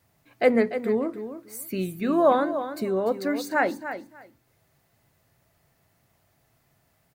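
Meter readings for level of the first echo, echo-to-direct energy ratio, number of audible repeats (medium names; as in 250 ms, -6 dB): -10.5 dB, -10.5 dB, 2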